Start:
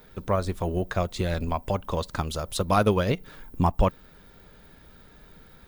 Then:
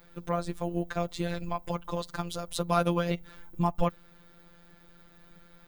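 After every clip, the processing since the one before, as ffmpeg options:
-af "afftfilt=real='hypot(re,im)*cos(PI*b)':imag='0':win_size=1024:overlap=0.75,volume=0.891"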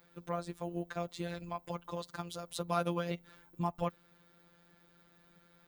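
-af "highpass=f=110:p=1,volume=0.473"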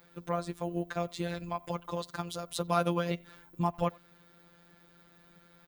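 -filter_complex "[0:a]asplit=2[s0][s1];[s1]adelay=90,highpass=300,lowpass=3400,asoftclip=type=hard:threshold=0.0501,volume=0.0562[s2];[s0][s2]amix=inputs=2:normalize=0,volume=1.68"

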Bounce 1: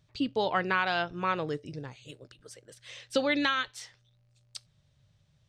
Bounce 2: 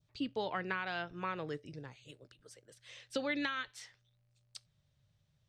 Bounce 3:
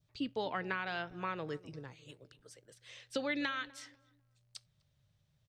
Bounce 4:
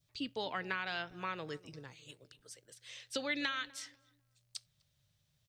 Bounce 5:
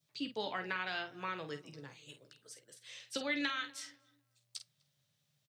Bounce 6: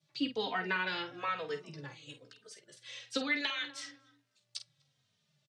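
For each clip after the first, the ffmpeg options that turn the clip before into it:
-filter_complex "[0:a]acrossover=split=440[s0][s1];[s1]acompressor=threshold=0.0355:ratio=6[s2];[s0][s2]amix=inputs=2:normalize=0,adynamicequalizer=threshold=0.00447:dfrequency=1900:dqfactor=1.2:tfrequency=1900:tqfactor=1.2:attack=5:release=100:ratio=0.375:range=2.5:mode=boostabove:tftype=bell,volume=0.422"
-filter_complex "[0:a]asplit=2[s0][s1];[s1]adelay=249,lowpass=f=1000:p=1,volume=0.119,asplit=2[s2][s3];[s3]adelay=249,lowpass=f=1000:p=1,volume=0.35,asplit=2[s4][s5];[s5]adelay=249,lowpass=f=1000:p=1,volume=0.35[s6];[s0][s2][s4][s6]amix=inputs=4:normalize=0"
-af "highshelf=f=2200:g=10,volume=0.668"
-filter_complex "[0:a]highpass=f=130:w=0.5412,highpass=f=130:w=1.3066,asplit=2[s0][s1];[s1]aecho=0:1:14|49:0.335|0.335[s2];[s0][s2]amix=inputs=2:normalize=0,volume=0.891"
-filter_complex "[0:a]highpass=100,lowpass=6200,asplit=2[s0][s1];[s1]adelay=3,afreqshift=-1.1[s2];[s0][s2]amix=inputs=2:normalize=1,volume=2.37"

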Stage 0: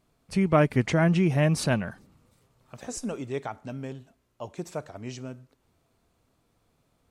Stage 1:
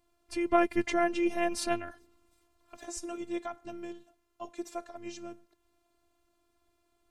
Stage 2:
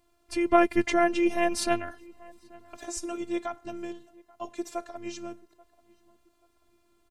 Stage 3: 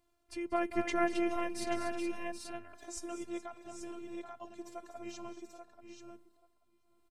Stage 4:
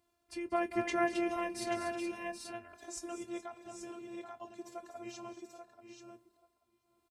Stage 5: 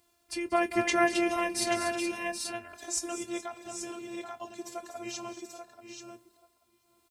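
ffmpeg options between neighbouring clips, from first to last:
-af "afftfilt=real='hypot(re,im)*cos(PI*b)':imag='0':win_size=512:overlap=0.75"
-filter_complex "[0:a]asplit=2[s0][s1];[s1]adelay=834,lowpass=f=1600:p=1,volume=0.0708,asplit=2[s2][s3];[s3]adelay=834,lowpass=f=1600:p=1,volume=0.37[s4];[s0][s2][s4]amix=inputs=3:normalize=0,volume=1.68"
-af "aecho=1:1:190|241|423|781|834:0.168|0.224|0.178|0.282|0.473,tremolo=f=0.97:d=0.47,volume=0.422"
-filter_complex "[0:a]highpass=56,asplit=2[s0][s1];[s1]adelay=25,volume=0.237[s2];[s0][s2]amix=inputs=2:normalize=0"
-af "highshelf=f=2300:g=8.5,volume=1.78"

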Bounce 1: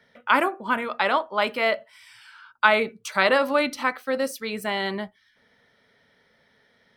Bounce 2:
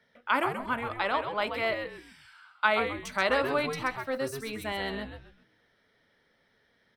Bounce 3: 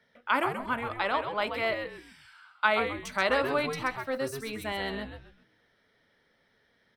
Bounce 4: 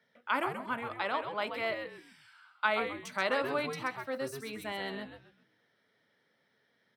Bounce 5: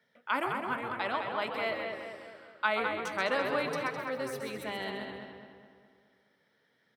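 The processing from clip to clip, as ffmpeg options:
-filter_complex "[0:a]asplit=5[s0][s1][s2][s3][s4];[s1]adelay=131,afreqshift=-130,volume=0.447[s5];[s2]adelay=262,afreqshift=-260,volume=0.138[s6];[s3]adelay=393,afreqshift=-390,volume=0.0432[s7];[s4]adelay=524,afreqshift=-520,volume=0.0133[s8];[s0][s5][s6][s7][s8]amix=inputs=5:normalize=0,volume=0.447"
-af anull
-af "highpass=f=110:w=0.5412,highpass=f=110:w=1.3066,volume=0.596"
-filter_complex "[0:a]asplit=2[s0][s1];[s1]adelay=208,lowpass=f=3400:p=1,volume=0.562,asplit=2[s2][s3];[s3]adelay=208,lowpass=f=3400:p=1,volume=0.52,asplit=2[s4][s5];[s5]adelay=208,lowpass=f=3400:p=1,volume=0.52,asplit=2[s6][s7];[s7]adelay=208,lowpass=f=3400:p=1,volume=0.52,asplit=2[s8][s9];[s9]adelay=208,lowpass=f=3400:p=1,volume=0.52,asplit=2[s10][s11];[s11]adelay=208,lowpass=f=3400:p=1,volume=0.52,asplit=2[s12][s13];[s13]adelay=208,lowpass=f=3400:p=1,volume=0.52[s14];[s0][s2][s4][s6][s8][s10][s12][s14]amix=inputs=8:normalize=0"

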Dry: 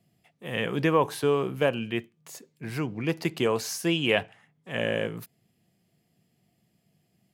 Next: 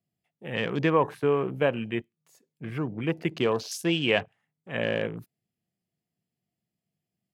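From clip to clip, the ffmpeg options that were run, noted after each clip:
-af "afwtdn=0.0112"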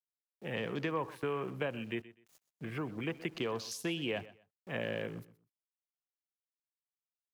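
-filter_complex "[0:a]acrossover=split=290|930[s0][s1][s2];[s0]acompressor=threshold=0.01:ratio=4[s3];[s1]acompressor=threshold=0.0158:ratio=4[s4];[s2]acompressor=threshold=0.0141:ratio=4[s5];[s3][s4][s5]amix=inputs=3:normalize=0,aeval=exprs='val(0)*gte(abs(val(0)),0.00168)':c=same,aecho=1:1:125|250:0.126|0.029,volume=0.75"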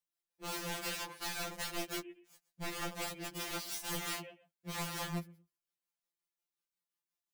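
-af "aeval=exprs='(mod(66.8*val(0)+1,2)-1)/66.8':c=same,tremolo=f=5.6:d=0.48,afftfilt=real='re*2.83*eq(mod(b,8),0)':imag='im*2.83*eq(mod(b,8),0)':win_size=2048:overlap=0.75,volume=2.11"

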